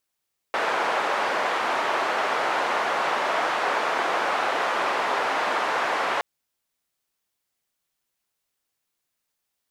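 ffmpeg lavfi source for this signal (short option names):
-f lavfi -i "anoisesrc=c=white:d=5.67:r=44100:seed=1,highpass=f=620,lowpass=f=1100,volume=-4dB"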